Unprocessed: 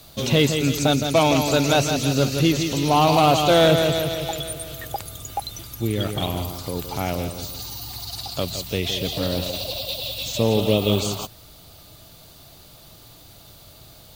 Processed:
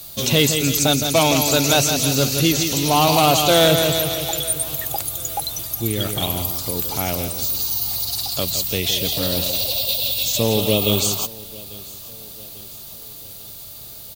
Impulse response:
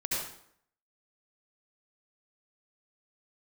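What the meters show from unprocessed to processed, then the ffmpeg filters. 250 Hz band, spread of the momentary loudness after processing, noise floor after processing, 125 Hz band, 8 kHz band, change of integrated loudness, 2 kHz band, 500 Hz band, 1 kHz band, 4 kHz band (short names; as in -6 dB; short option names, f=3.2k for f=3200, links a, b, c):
0.0 dB, 19 LU, -37 dBFS, 0.0 dB, +9.5 dB, +3.5 dB, +3.0 dB, +0.5 dB, +0.5 dB, +5.5 dB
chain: -af "crystalizer=i=2.5:c=0,aecho=1:1:845|1690|2535|3380:0.0794|0.0405|0.0207|0.0105"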